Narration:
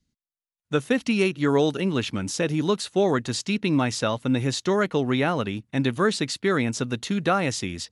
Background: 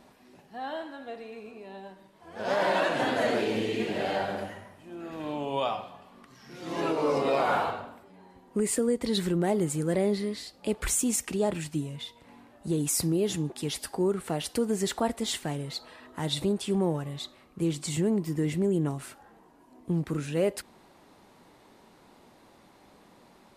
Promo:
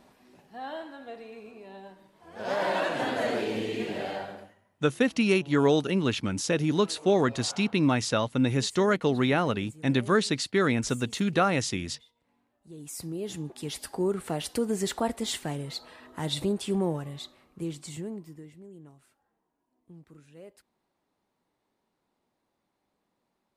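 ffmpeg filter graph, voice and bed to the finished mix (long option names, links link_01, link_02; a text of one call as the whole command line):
ffmpeg -i stem1.wav -i stem2.wav -filter_complex "[0:a]adelay=4100,volume=-1.5dB[link_01];[1:a]volume=17.5dB,afade=type=out:start_time=3.92:duration=0.63:silence=0.125893,afade=type=in:start_time=12.68:duration=1.45:silence=0.105925,afade=type=out:start_time=16.76:duration=1.75:silence=0.0841395[link_02];[link_01][link_02]amix=inputs=2:normalize=0" out.wav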